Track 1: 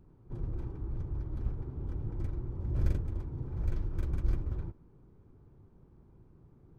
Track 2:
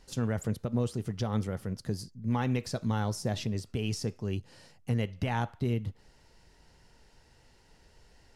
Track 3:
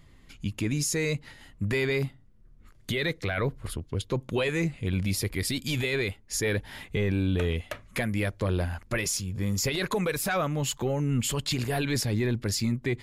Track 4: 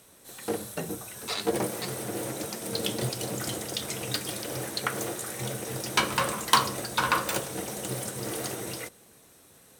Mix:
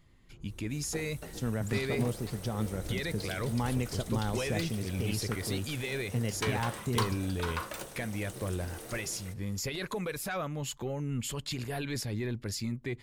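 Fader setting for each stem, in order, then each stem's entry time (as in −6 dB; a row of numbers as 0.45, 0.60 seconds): −14.5, −2.5, −7.5, −12.0 decibels; 0.00, 1.25, 0.00, 0.45 seconds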